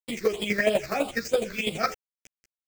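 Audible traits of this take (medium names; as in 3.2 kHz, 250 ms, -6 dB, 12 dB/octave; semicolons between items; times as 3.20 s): a quantiser's noise floor 6-bit, dither none; phasing stages 6, 3.1 Hz, lowest notch 790–1700 Hz; chopped level 12 Hz, depth 65%, duty 15%; a shimmering, thickened sound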